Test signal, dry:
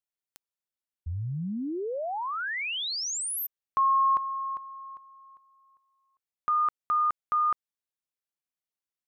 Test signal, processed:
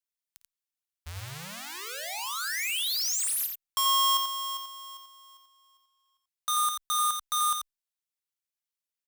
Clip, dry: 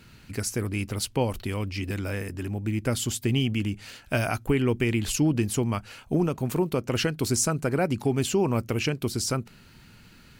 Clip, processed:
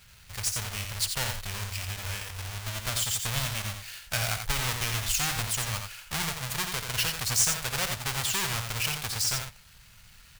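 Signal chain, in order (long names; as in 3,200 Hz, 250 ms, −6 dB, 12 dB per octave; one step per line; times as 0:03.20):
each half-wave held at its own peak
guitar amp tone stack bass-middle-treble 10-0-10
multi-tap delay 54/87 ms −13.5/−6 dB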